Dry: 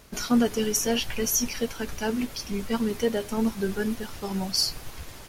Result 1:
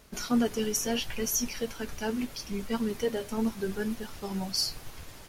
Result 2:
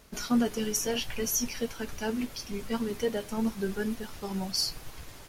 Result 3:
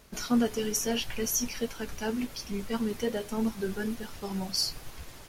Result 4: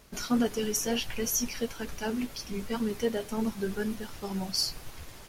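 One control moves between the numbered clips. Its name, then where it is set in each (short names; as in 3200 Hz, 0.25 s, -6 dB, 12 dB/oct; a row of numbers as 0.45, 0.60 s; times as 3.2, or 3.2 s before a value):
flange, rate: 0.73, 0.25, 1.2, 2.1 Hz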